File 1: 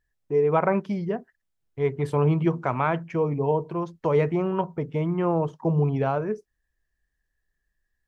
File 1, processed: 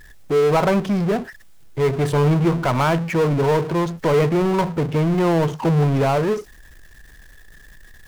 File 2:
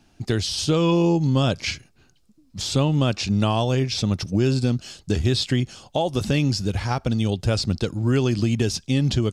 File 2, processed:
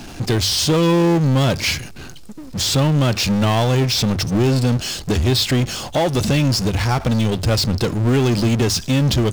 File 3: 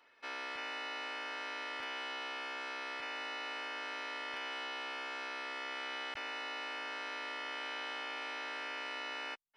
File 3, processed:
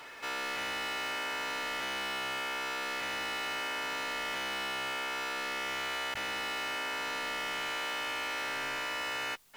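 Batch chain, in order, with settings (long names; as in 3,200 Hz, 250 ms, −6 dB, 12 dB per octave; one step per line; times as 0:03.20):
power curve on the samples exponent 0.5
mains-hum notches 50/100 Hz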